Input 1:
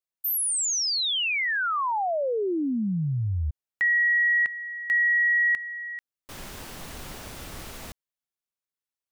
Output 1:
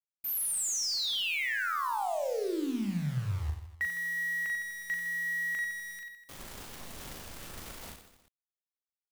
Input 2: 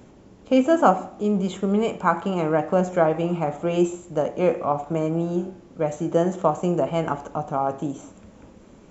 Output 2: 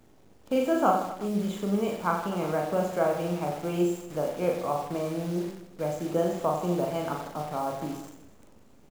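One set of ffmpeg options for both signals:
-af "acrusher=bits=7:dc=4:mix=0:aa=0.000001,aecho=1:1:40|92|159.6|247.5|361.7:0.631|0.398|0.251|0.158|0.1,volume=-8dB"

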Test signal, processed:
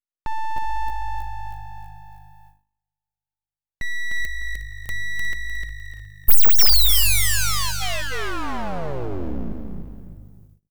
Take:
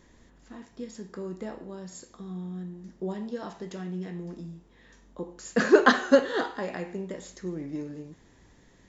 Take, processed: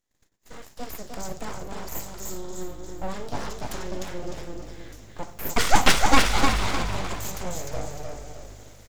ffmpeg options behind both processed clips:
-filter_complex "[0:a]asuperstop=centerf=1400:order=12:qfactor=5.2,aemphasis=mode=production:type=75fm,asplit=2[a][b];[b]aecho=0:1:303|606|909|1212:0.596|0.203|0.0689|0.0234[c];[a][c]amix=inputs=2:normalize=0,aeval=exprs='abs(val(0))':c=same,asplit=2[d][e];[e]asplit=3[f][g][h];[f]adelay=360,afreqshift=-51,volume=-13dB[i];[g]adelay=720,afreqshift=-102,volume=-22.6dB[j];[h]adelay=1080,afreqshift=-153,volume=-32.3dB[k];[i][j][k]amix=inputs=3:normalize=0[l];[d][l]amix=inputs=2:normalize=0,acontrast=31,agate=range=-30dB:threshold=-47dB:ratio=16:detection=peak"

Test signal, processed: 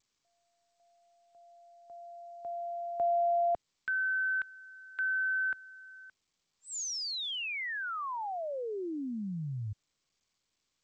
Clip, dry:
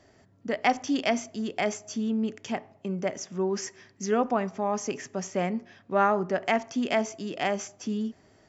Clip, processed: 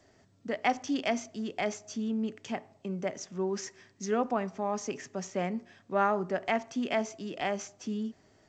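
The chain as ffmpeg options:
-filter_complex "[0:a]acrossover=split=110|2800[a][b][c];[a]crystalizer=i=5:c=0[d];[d][b][c]amix=inputs=3:normalize=0,volume=-4dB" -ar 16000 -c:a g722

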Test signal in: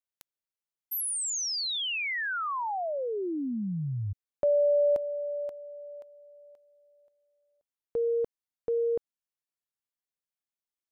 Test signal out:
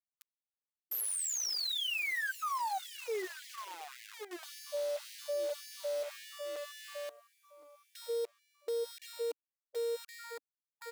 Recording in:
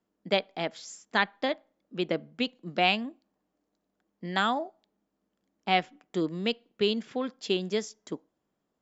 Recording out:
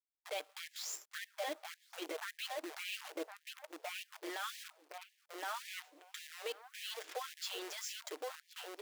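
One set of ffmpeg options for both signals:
-filter_complex "[0:a]aecho=1:1:6.5:0.67,asplit=2[a][b];[b]adelay=1065,lowpass=f=1.4k:p=1,volume=-11dB,asplit=2[c][d];[d]adelay=1065,lowpass=f=1.4k:p=1,volume=0.33,asplit=2[e][f];[f]adelay=1065,lowpass=f=1.4k:p=1,volume=0.33,asplit=2[g][h];[h]adelay=1065,lowpass=f=1.4k:p=1,volume=0.33[i];[a][c][e][g][i]amix=inputs=5:normalize=0,acompressor=threshold=-27dB:ratio=4:attack=0.23:release=197:knee=1:detection=rms,alimiter=level_in=6.5dB:limit=-24dB:level=0:latency=1:release=39,volume=-6.5dB,acrusher=bits=8:dc=4:mix=0:aa=0.000001,afftfilt=real='re*gte(b*sr/1024,280*pow(1700/280,0.5+0.5*sin(2*PI*1.8*pts/sr)))':imag='im*gte(b*sr/1024,280*pow(1700/280,0.5+0.5*sin(2*PI*1.8*pts/sr)))':win_size=1024:overlap=0.75"

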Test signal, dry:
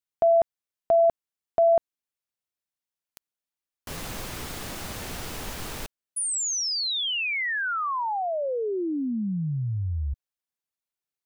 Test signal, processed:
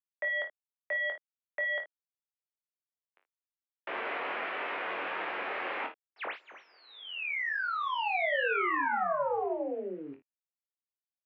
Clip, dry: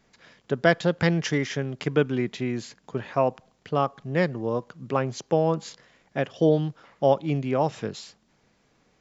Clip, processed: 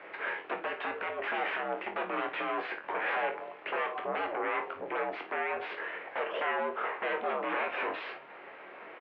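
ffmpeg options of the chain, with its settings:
-filter_complex "[0:a]acompressor=threshold=-36dB:ratio=4:attack=1.3:release=164:knee=1:detection=peak,alimiter=level_in=5dB:limit=-24dB:level=0:latency=1:release=328,volume=-5dB,acrusher=bits=10:mix=0:aa=0.000001,aeval=exprs='0.0355*sin(PI/2*5.01*val(0)/0.0355)':c=same,asplit=2[a][b];[b]adelay=23,volume=-6.5dB[c];[a][c]amix=inputs=2:normalize=0,asplit=2[d][e];[e]aecho=0:1:11|42|55:0.282|0.2|0.266[f];[d][f]amix=inputs=2:normalize=0,highpass=f=470:t=q:w=0.5412,highpass=f=470:t=q:w=1.307,lowpass=f=2.6k:t=q:w=0.5176,lowpass=f=2.6k:t=q:w=0.7071,lowpass=f=2.6k:t=q:w=1.932,afreqshift=-72,volume=1.5dB"

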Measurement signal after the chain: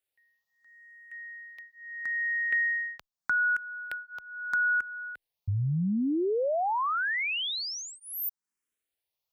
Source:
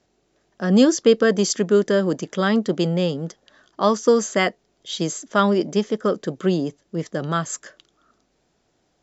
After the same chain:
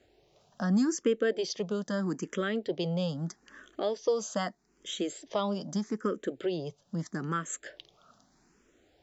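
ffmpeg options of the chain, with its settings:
-filter_complex "[0:a]acompressor=threshold=-39dB:ratio=2,asplit=2[a][b];[b]afreqshift=0.79[c];[a][c]amix=inputs=2:normalize=1,volume=4.5dB"

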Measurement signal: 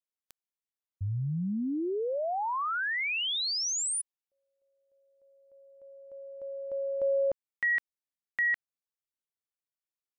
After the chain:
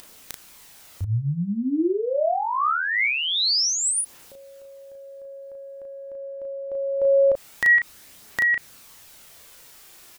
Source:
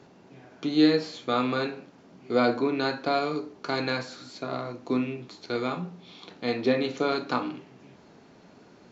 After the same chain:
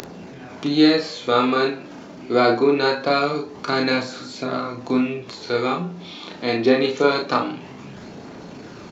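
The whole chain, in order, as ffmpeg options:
-filter_complex "[0:a]aphaser=in_gain=1:out_gain=1:delay=3.4:decay=0.3:speed=0.24:type=triangular,acompressor=mode=upward:threshold=-42dB:ratio=4:attack=6.1:release=23:knee=2.83:detection=peak,asplit=2[a][b];[b]adelay=35,volume=-4dB[c];[a][c]amix=inputs=2:normalize=0,volume=6dB"

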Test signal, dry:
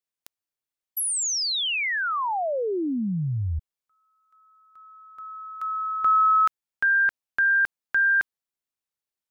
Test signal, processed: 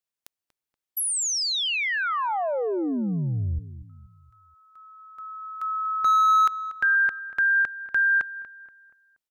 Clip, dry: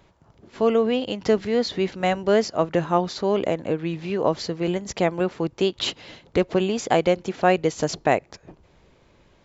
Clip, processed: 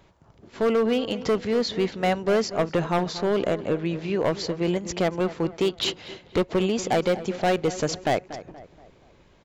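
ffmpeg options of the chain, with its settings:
-filter_complex "[0:a]asoftclip=type=hard:threshold=-17dB,asplit=2[a][b];[b]adelay=238,lowpass=f=2.3k:p=1,volume=-14dB,asplit=2[c][d];[d]adelay=238,lowpass=f=2.3k:p=1,volume=0.43,asplit=2[e][f];[f]adelay=238,lowpass=f=2.3k:p=1,volume=0.43,asplit=2[g][h];[h]adelay=238,lowpass=f=2.3k:p=1,volume=0.43[i];[c][e][g][i]amix=inputs=4:normalize=0[j];[a][j]amix=inputs=2:normalize=0"

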